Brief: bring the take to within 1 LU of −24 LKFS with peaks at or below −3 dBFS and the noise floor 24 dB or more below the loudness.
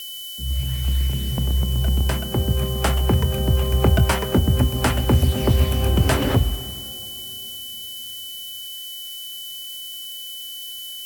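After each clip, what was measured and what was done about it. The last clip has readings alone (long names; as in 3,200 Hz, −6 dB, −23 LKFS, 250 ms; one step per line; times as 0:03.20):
interfering tone 3,000 Hz; level of the tone −33 dBFS; background noise floor −34 dBFS; target noise floor −47 dBFS; integrated loudness −22.5 LKFS; sample peak −5.0 dBFS; target loudness −24.0 LKFS
→ notch filter 3,000 Hz, Q 30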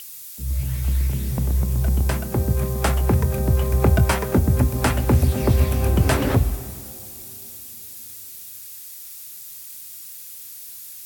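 interfering tone none found; background noise floor −39 dBFS; target noise floor −45 dBFS
→ noise reduction from a noise print 6 dB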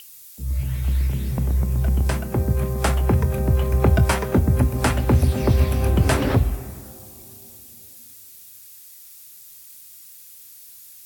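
background noise floor −45 dBFS; integrated loudness −21.0 LKFS; sample peak −5.0 dBFS; target loudness −24.0 LKFS
→ level −3 dB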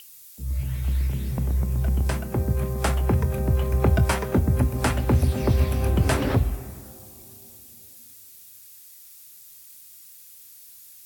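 integrated loudness −24.0 LKFS; sample peak −8.0 dBFS; background noise floor −48 dBFS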